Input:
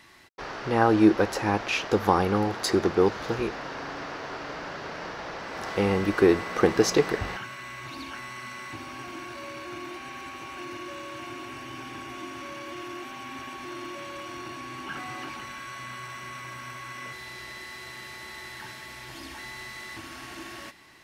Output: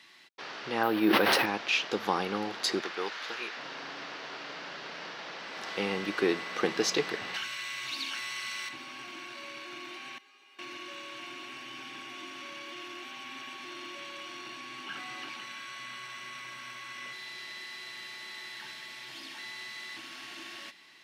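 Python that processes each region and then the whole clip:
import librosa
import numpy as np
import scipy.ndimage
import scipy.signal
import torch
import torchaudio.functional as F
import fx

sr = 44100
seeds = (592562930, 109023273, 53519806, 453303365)

y = fx.chain(x, sr, fx.lowpass(hz=4400.0, slope=12),
    fx.resample_bad(factor=3, down='filtered', up='hold'),
    fx.sustainer(db_per_s=21.0), at=(0.83, 1.46))
y = fx.chain(y, sr, fx.highpass(hz=890.0, slope=6),
    fx.peak_eq(hz=1700.0, db=4.0, octaves=1.4), at=(2.8, 3.57))
y = fx.chain(y, sr, fx.high_shelf(hz=2400.0, db=11.0),
    fx.hum_notches(base_hz=50, count=9), at=(7.34, 8.69))
y = fx.chain(y, sr, fx.bessel_highpass(hz=270.0, order=2),
    fx.comb_fb(f0_hz=410.0, decay_s=0.38, harmonics='all', damping=0.0, mix_pct=90), at=(10.18, 10.59))
y = scipy.signal.sosfilt(scipy.signal.butter(4, 150.0, 'highpass', fs=sr, output='sos'), y)
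y = fx.peak_eq(y, sr, hz=3400.0, db=11.5, octaves=1.8)
y = y * 10.0 ** (-9.0 / 20.0)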